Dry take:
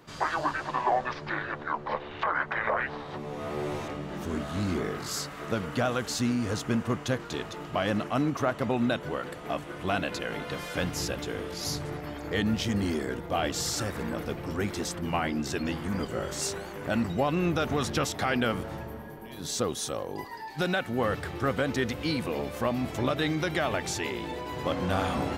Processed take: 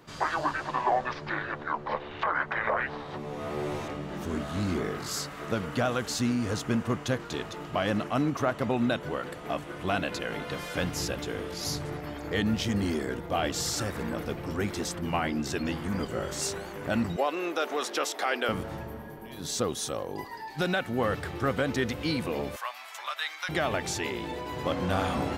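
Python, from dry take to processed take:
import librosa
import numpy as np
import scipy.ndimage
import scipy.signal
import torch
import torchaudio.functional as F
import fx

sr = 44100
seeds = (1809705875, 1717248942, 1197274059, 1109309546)

y = fx.highpass(x, sr, hz=350.0, slope=24, at=(17.16, 18.49))
y = fx.highpass(y, sr, hz=960.0, slope=24, at=(22.56, 23.49))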